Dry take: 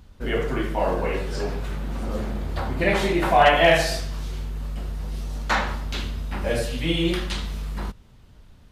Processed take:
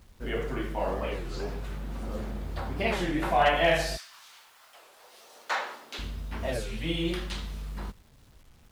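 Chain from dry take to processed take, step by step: 3.96–5.98 s: high-pass 1.1 kHz -> 300 Hz 24 dB/octave; bit crusher 9-bit; warped record 33 1/3 rpm, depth 250 cents; trim -7 dB

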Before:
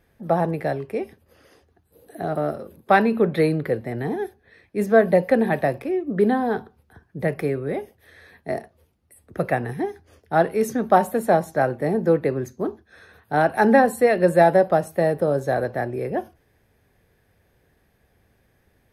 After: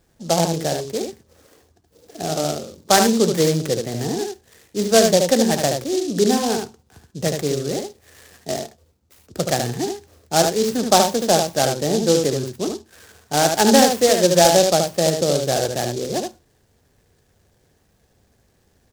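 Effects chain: delay 75 ms -5 dB; delay time shaken by noise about 5.1 kHz, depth 0.1 ms; trim +1 dB

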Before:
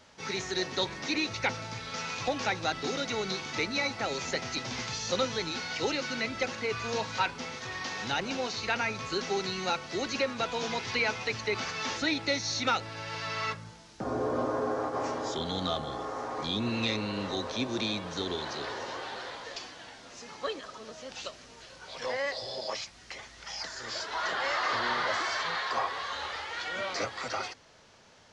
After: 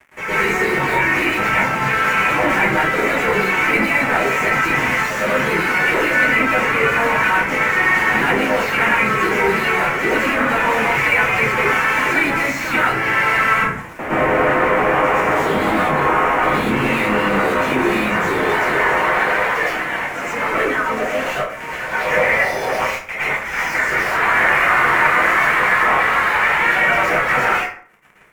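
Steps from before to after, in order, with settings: tone controls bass -7 dB, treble +3 dB; reverb removal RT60 0.58 s; harmony voices +3 st -4 dB; fuzz box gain 47 dB, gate -51 dBFS; resonant high shelf 3 kHz -12 dB, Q 3; plate-style reverb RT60 0.51 s, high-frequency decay 0.6×, pre-delay 100 ms, DRR -9 dB; trim -12.5 dB

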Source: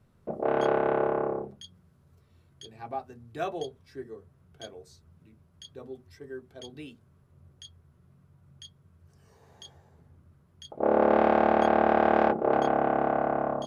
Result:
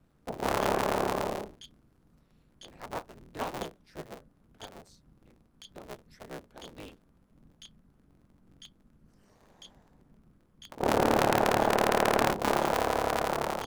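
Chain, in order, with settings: cycle switcher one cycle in 3, inverted; ring modulator 100 Hz

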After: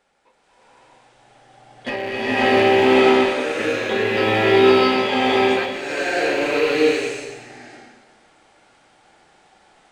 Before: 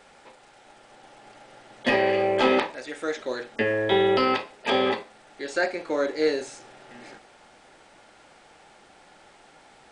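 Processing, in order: rattle on loud lows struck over -40 dBFS, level -19 dBFS; spectral noise reduction 8 dB; swelling reverb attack 650 ms, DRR -11.5 dB; trim -5 dB

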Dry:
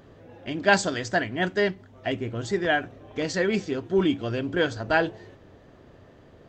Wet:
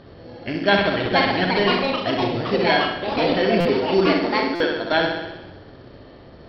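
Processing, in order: 4.06–4.92 s: high-pass 230 Hz 24 dB/octave; in parallel at +0.5 dB: compression, threshold -33 dBFS, peak gain reduction 18 dB; on the sum: sample-and-hold 9×; flutter echo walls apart 11.1 m, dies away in 0.98 s; ever faster or slower copies 648 ms, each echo +5 st, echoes 2; on a send at -22 dB: reverberation RT60 1.7 s, pre-delay 48 ms; on the sum: resampled via 11.025 kHz; buffer glitch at 3.60/4.55 s, samples 256, times 8

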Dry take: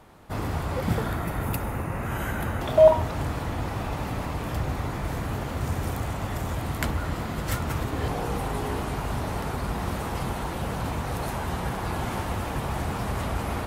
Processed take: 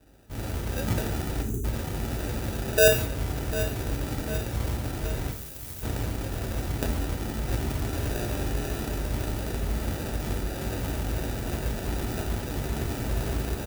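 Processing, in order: sample-and-hold 41×; feedback delay 748 ms, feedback 56%, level -14 dB; level rider gain up to 4 dB; treble shelf 9.5 kHz +10 dB; 1.42–1.64 s: spectral selection erased 460–5900 Hz; 5.31–5.83 s: pre-emphasis filter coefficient 0.8; gated-style reverb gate 210 ms falling, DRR 3 dB; trim -8 dB

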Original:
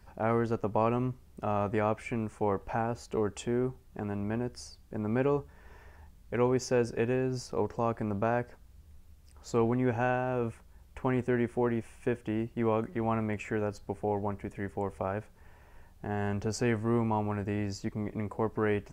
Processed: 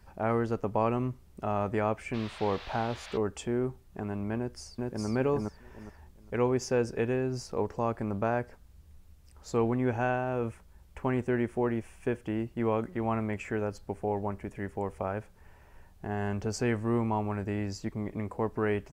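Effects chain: 2.13–3.16 s: band noise 590–4100 Hz -47 dBFS; 4.37–5.07 s: echo throw 410 ms, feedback 25%, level -0.5 dB

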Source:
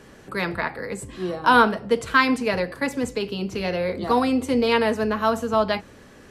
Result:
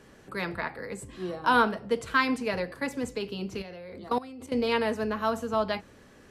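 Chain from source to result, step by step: 3.62–4.52 s: level held to a coarse grid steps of 18 dB; trim -6.5 dB

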